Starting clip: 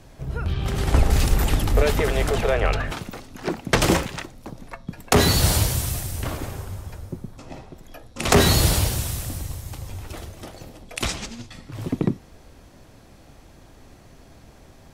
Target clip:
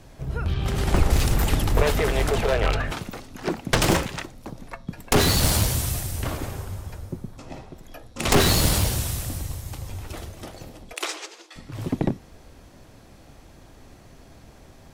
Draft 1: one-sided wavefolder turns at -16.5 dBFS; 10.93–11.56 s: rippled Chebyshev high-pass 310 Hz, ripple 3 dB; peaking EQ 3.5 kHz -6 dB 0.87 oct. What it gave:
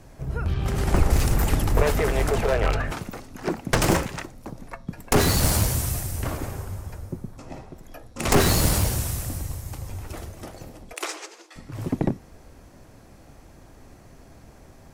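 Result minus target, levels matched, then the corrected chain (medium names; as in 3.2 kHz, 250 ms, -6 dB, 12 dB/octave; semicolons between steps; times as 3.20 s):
4 kHz band -3.5 dB
one-sided wavefolder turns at -16.5 dBFS; 10.93–11.56 s: rippled Chebyshev high-pass 310 Hz, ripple 3 dB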